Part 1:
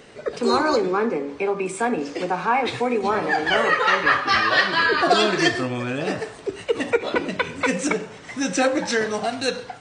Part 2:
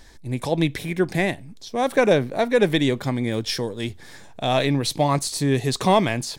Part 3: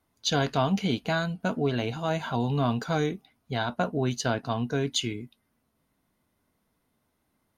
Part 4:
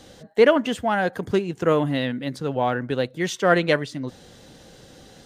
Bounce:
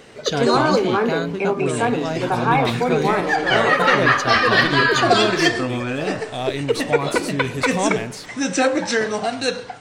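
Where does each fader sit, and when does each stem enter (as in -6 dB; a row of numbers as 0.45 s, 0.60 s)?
+2.0 dB, -5.0 dB, +2.0 dB, -9.5 dB; 0.00 s, 1.90 s, 0.00 s, 0.00 s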